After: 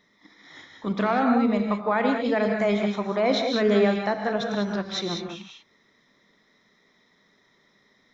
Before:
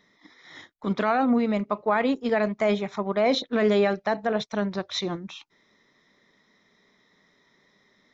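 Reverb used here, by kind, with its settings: non-linear reverb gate 0.22 s rising, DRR 2.5 dB; gain -1 dB

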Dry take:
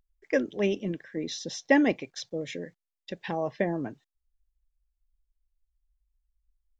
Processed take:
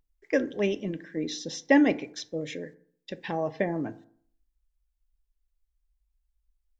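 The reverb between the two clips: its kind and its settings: FDN reverb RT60 0.58 s, low-frequency decay 1.05×, high-frequency decay 0.45×, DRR 12 dB

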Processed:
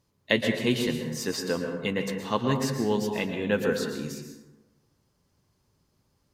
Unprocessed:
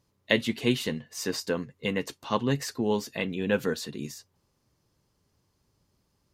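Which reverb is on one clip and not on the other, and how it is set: plate-style reverb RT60 1.1 s, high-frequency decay 0.45×, pre-delay 0.105 s, DRR 4 dB

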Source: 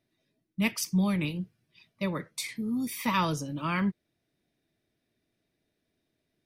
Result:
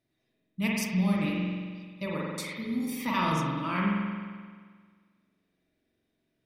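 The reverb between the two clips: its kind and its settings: spring tank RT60 1.7 s, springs 44 ms, chirp 75 ms, DRR -3.5 dB; gain -4 dB

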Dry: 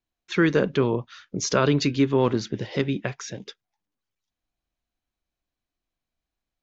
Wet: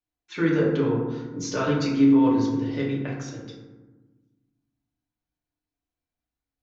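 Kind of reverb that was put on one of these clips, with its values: FDN reverb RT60 1.2 s, low-frequency decay 1.55×, high-frequency decay 0.4×, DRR -5.5 dB; gain -10.5 dB

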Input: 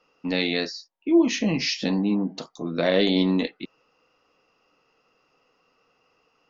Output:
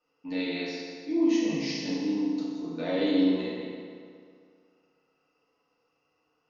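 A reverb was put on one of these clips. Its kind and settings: FDN reverb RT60 2.2 s, low-frequency decay 0.9×, high-frequency decay 0.7×, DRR -8 dB; gain -16.5 dB

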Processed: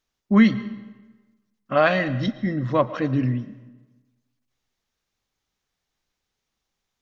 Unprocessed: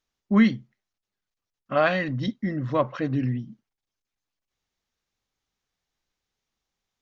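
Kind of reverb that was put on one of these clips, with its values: digital reverb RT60 1.2 s, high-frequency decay 0.75×, pre-delay 75 ms, DRR 15.5 dB; gain +3 dB

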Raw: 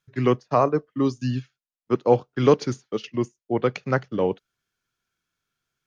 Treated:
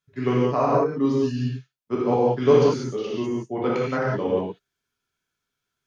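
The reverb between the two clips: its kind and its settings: non-linear reverb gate 0.22 s flat, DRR -7 dB; gain -7.5 dB

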